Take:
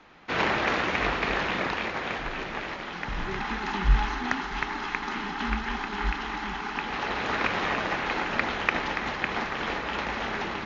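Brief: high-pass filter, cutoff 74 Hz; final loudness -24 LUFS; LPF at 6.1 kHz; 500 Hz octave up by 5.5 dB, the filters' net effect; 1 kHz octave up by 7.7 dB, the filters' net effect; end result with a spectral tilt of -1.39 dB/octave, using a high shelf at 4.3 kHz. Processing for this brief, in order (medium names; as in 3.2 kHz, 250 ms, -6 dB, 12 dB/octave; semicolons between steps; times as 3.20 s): high-pass 74 Hz; low-pass 6.1 kHz; peaking EQ 500 Hz +4.5 dB; peaking EQ 1 kHz +8 dB; treble shelf 4.3 kHz +6 dB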